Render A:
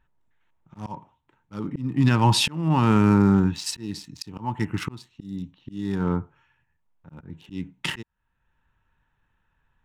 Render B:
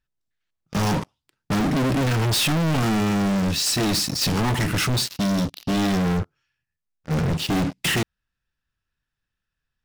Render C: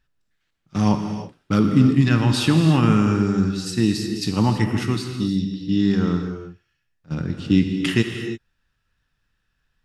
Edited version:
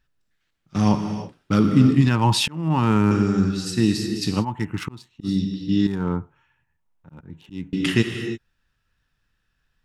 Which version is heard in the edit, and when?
C
2.07–3.11 s: from A
4.42–5.26 s: from A, crossfade 0.06 s
5.87–7.73 s: from A
not used: B

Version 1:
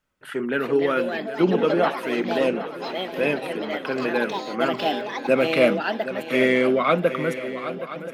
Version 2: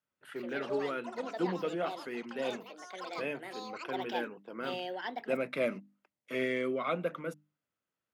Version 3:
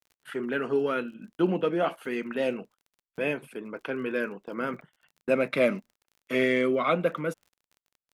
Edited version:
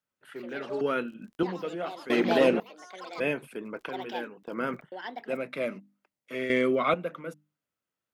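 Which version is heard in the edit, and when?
2
0.81–1.43 s: from 3
2.10–2.60 s: from 1
3.20–3.89 s: from 3
4.43–4.92 s: from 3
6.50–6.94 s: from 3

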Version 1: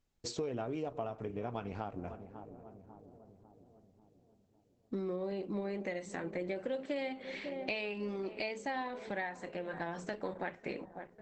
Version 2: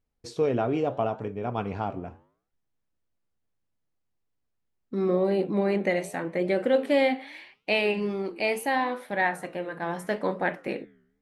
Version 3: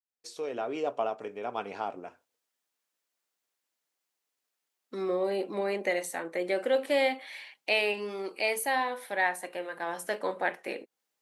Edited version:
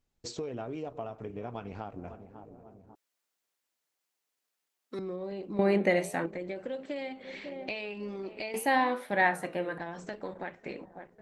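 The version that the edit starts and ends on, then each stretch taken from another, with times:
1
2.95–4.99 s: from 3
5.59–6.26 s: from 2
8.54–9.78 s: from 2

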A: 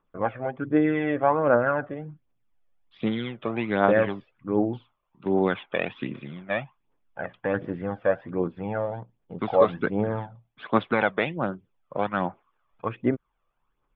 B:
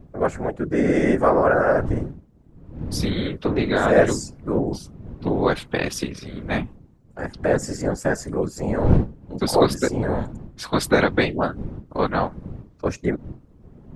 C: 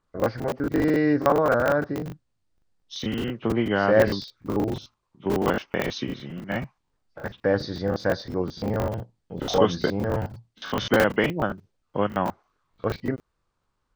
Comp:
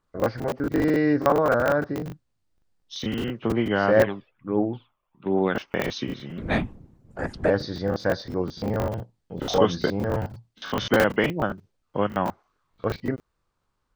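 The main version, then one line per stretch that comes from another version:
C
4.04–5.55 s: from A
6.38–7.50 s: from B

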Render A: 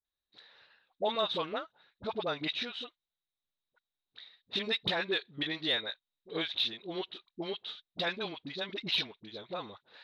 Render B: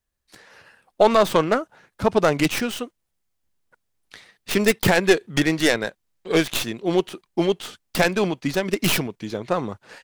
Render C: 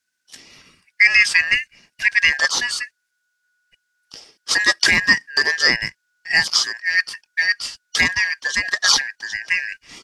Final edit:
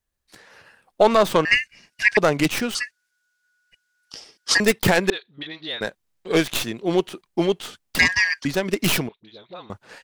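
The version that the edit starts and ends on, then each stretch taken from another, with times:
B
1.45–2.17 s: from C
2.75–4.60 s: from C
5.10–5.81 s: from A
7.99–8.45 s: from C
9.09–9.70 s: from A

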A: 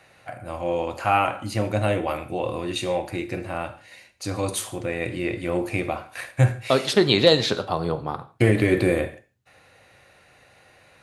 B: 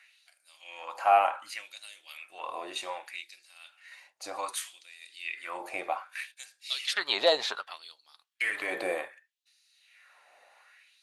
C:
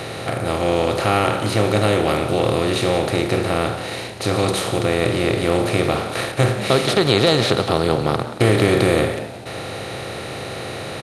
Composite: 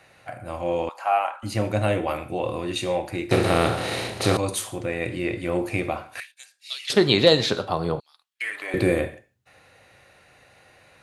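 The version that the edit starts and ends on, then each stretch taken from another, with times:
A
0.89–1.43 s: from B
3.31–4.37 s: from C
6.20–6.90 s: from B
8.00–8.74 s: from B

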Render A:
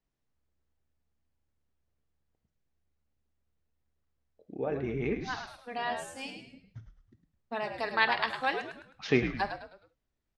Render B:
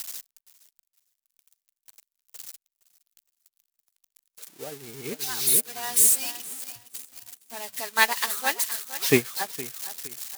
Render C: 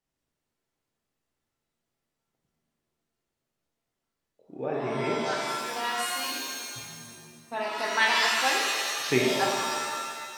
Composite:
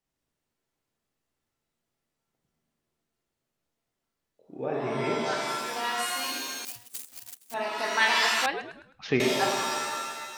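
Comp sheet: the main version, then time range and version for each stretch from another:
C
6.65–7.54 s: from B
8.46–9.20 s: from A

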